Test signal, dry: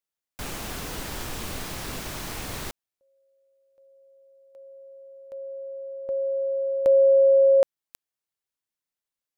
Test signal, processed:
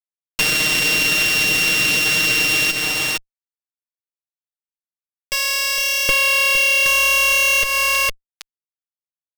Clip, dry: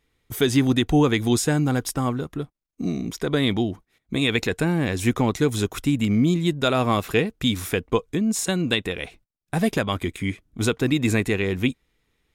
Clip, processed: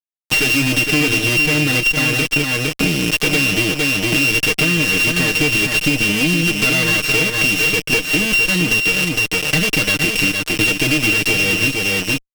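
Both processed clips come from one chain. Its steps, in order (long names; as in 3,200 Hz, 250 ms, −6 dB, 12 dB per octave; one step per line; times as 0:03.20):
samples sorted by size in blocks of 16 samples
meter weighting curve D
fuzz pedal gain 36 dB, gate −29 dBFS
single-tap delay 460 ms −6.5 dB
dynamic equaliser 870 Hz, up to −6 dB, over −36 dBFS, Q 1.7
comb filter 6.5 ms, depth 71%
downward compressor, threshold −19 dBFS
level +5.5 dB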